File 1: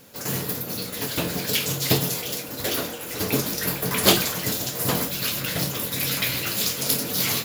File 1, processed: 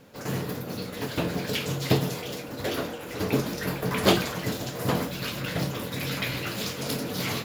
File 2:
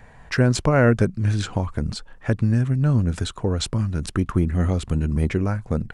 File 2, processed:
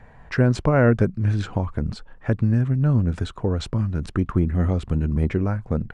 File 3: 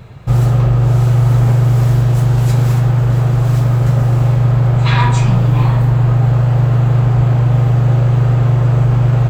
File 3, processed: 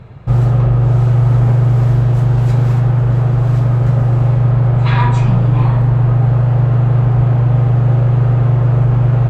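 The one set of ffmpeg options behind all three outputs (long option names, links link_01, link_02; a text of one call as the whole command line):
ffmpeg -i in.wav -af "lowpass=frequency=1900:poles=1" out.wav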